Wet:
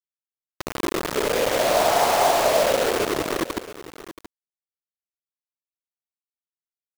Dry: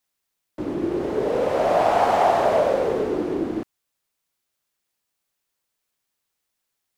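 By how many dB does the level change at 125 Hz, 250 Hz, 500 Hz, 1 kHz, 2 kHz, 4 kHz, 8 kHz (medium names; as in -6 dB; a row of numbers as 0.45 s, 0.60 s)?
-1.5 dB, -3.5 dB, -1.0 dB, -1.0 dB, +5.5 dB, +11.5 dB, no reading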